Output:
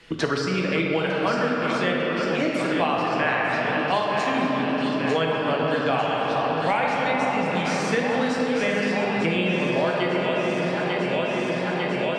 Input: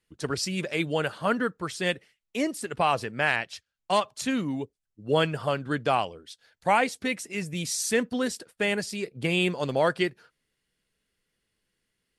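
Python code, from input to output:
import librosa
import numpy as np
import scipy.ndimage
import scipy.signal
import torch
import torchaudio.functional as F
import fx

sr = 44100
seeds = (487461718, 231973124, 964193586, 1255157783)

y = scipy.signal.sosfilt(scipy.signal.butter(2, 4300.0, 'lowpass', fs=sr, output='sos'), x)
y = fx.low_shelf(y, sr, hz=190.0, db=-7.0)
y = fx.echo_alternate(y, sr, ms=449, hz=1400.0, feedback_pct=83, wet_db=-7.0)
y = fx.room_shoebox(y, sr, seeds[0], volume_m3=180.0, walls='hard', distance_m=0.64)
y = fx.band_squash(y, sr, depth_pct=100)
y = y * 10.0 ** (-1.0 / 20.0)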